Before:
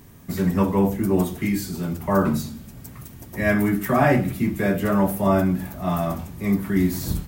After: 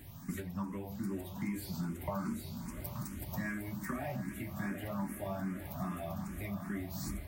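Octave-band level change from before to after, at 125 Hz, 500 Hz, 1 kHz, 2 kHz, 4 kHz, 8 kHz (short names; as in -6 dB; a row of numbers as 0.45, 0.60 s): -16.0, -20.5, -18.0, -16.5, -13.0, -12.0 dB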